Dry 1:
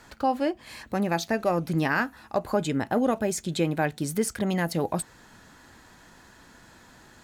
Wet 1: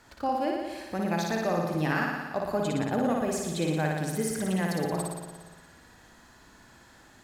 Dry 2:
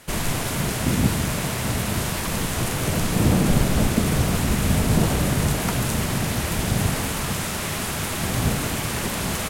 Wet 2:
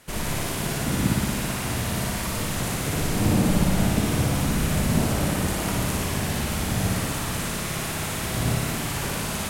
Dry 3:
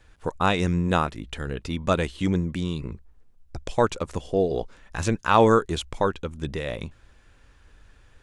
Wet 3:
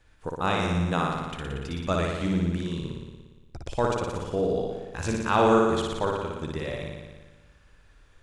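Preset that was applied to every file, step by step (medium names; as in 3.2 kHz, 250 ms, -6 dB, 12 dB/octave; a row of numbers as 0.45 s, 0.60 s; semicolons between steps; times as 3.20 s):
flutter echo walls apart 10 m, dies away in 1.3 s; trim -5.5 dB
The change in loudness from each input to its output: -2.0 LU, -2.0 LU, -2.0 LU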